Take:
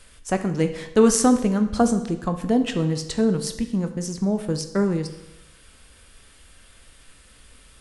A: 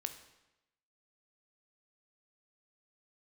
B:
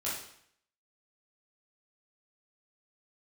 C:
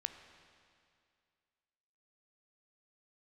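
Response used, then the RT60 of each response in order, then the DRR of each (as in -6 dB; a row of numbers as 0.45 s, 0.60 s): A; 0.95 s, 0.65 s, 2.3 s; 7.5 dB, -8.5 dB, 8.0 dB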